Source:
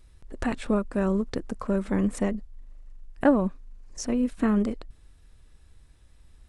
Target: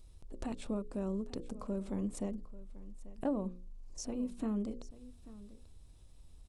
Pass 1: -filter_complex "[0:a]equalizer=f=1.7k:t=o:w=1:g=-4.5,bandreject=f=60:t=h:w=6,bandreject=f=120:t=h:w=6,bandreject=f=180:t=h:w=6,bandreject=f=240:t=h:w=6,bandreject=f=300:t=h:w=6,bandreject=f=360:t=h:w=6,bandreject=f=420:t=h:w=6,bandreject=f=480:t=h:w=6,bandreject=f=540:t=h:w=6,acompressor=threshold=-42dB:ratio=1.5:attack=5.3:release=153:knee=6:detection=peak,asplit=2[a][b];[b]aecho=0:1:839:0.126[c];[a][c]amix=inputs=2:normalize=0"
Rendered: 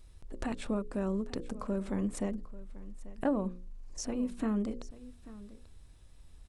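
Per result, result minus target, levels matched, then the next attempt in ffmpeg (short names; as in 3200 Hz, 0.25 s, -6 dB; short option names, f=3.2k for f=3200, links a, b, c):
2000 Hz band +6.5 dB; compressor: peak gain reduction -3.5 dB
-filter_complex "[0:a]equalizer=f=1.7k:t=o:w=1:g=-13,bandreject=f=60:t=h:w=6,bandreject=f=120:t=h:w=6,bandreject=f=180:t=h:w=6,bandreject=f=240:t=h:w=6,bandreject=f=300:t=h:w=6,bandreject=f=360:t=h:w=6,bandreject=f=420:t=h:w=6,bandreject=f=480:t=h:w=6,bandreject=f=540:t=h:w=6,acompressor=threshold=-42dB:ratio=1.5:attack=5.3:release=153:knee=6:detection=peak,asplit=2[a][b];[b]aecho=0:1:839:0.126[c];[a][c]amix=inputs=2:normalize=0"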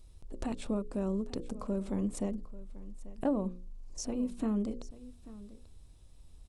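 compressor: peak gain reduction -3.5 dB
-filter_complex "[0:a]equalizer=f=1.7k:t=o:w=1:g=-13,bandreject=f=60:t=h:w=6,bandreject=f=120:t=h:w=6,bandreject=f=180:t=h:w=6,bandreject=f=240:t=h:w=6,bandreject=f=300:t=h:w=6,bandreject=f=360:t=h:w=6,bandreject=f=420:t=h:w=6,bandreject=f=480:t=h:w=6,bandreject=f=540:t=h:w=6,acompressor=threshold=-53dB:ratio=1.5:attack=5.3:release=153:knee=6:detection=peak,asplit=2[a][b];[b]aecho=0:1:839:0.126[c];[a][c]amix=inputs=2:normalize=0"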